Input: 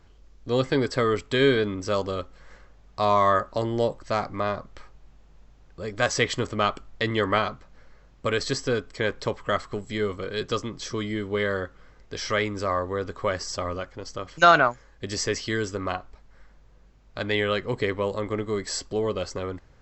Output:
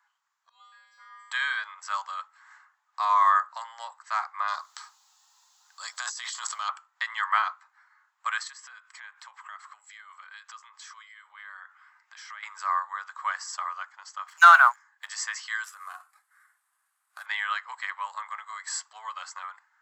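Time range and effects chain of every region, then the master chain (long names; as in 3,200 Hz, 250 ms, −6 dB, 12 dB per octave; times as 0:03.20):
0:00.49–0:01.31: parametric band 1,300 Hz −2.5 dB 1.7 octaves + de-essing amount 70% + tuned comb filter 110 Hz, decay 1.4 s, harmonics odd, mix 100%
0:04.48–0:06.69: high shelf with overshoot 3,100 Hz +11 dB, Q 1.5 + compressor whose output falls as the input rises −28 dBFS
0:08.47–0:12.43: parametric band 2,400 Hz +3.5 dB 0.82 octaves + downward compressor 8 to 1, threshold −37 dBFS
0:14.26–0:15.09: parametric band 280 Hz −11.5 dB 0.39 octaves + leveller curve on the samples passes 1
0:15.64–0:17.26: variable-slope delta modulation 64 kbit/s + downward compressor 4 to 1, threshold −33 dBFS + notch filter 920 Hz, Q 6.8
whole clip: flat-topped bell 3,700 Hz −9 dB; noise reduction from a noise print of the clip's start 7 dB; Butterworth high-pass 900 Hz 48 dB per octave; level +2.5 dB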